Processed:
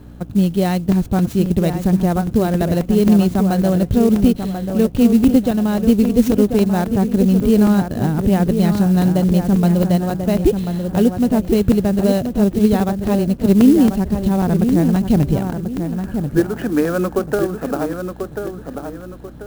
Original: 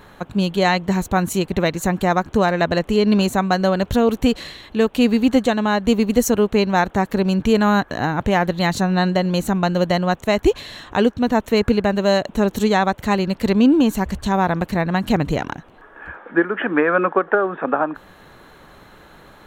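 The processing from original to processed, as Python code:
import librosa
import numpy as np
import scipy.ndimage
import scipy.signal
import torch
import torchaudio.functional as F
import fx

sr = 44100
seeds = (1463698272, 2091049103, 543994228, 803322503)

p1 = fx.graphic_eq(x, sr, hz=(125, 500, 1000, 2000, 4000, 8000), db=(4, -3, -11, -12, -4, -9))
p2 = p1 + fx.echo_wet_lowpass(p1, sr, ms=1039, feedback_pct=35, hz=2100.0, wet_db=-7.0, dry=0)
p3 = fx.dmg_buzz(p2, sr, base_hz=60.0, harmonics=5, level_db=-43.0, tilt_db=-4, odd_only=False)
p4 = fx.high_shelf(p3, sr, hz=7400.0, db=-7.0)
p5 = fx.buffer_crackle(p4, sr, first_s=0.92, period_s=0.27, block=128, kind='zero')
p6 = fx.clock_jitter(p5, sr, seeds[0], jitter_ms=0.03)
y = p6 * 10.0 ** (4.0 / 20.0)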